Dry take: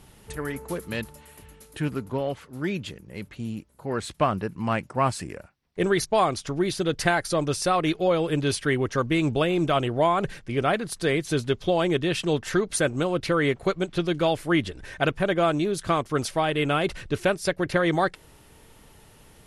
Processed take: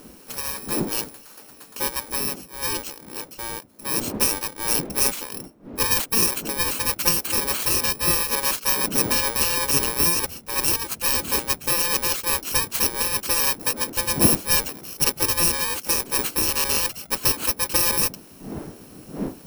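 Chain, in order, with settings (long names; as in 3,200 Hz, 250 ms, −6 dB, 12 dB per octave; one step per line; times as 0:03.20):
samples in bit-reversed order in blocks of 64 samples
wind on the microphone 130 Hz −32 dBFS
gate on every frequency bin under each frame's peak −10 dB weak
level +6 dB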